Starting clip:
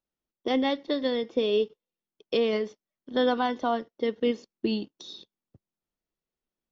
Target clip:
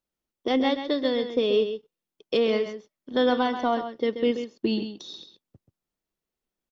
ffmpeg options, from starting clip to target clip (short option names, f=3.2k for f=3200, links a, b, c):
-af "aecho=1:1:132:0.335,acontrast=69,volume=-4.5dB"